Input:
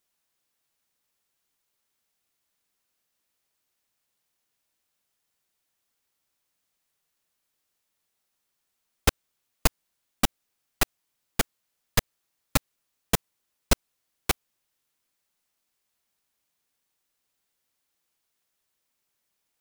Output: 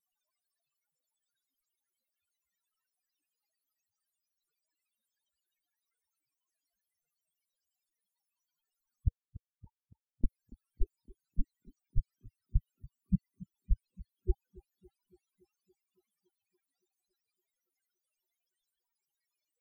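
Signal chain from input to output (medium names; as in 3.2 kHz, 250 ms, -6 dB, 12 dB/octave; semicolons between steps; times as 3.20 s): loudest bins only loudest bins 4; 9.08–10.24 s: auto-wah 480–1200 Hz, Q 11, down, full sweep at -32.5 dBFS; bass shelf 74 Hz +5 dB; vibrato 7.1 Hz 46 cents; bass shelf 450 Hz -7.5 dB; on a send: tape echo 282 ms, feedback 73%, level -17 dB; on the sum: peak limiter -27.5 dBFS, peak gain reduction 9.5 dB; trim +10.5 dB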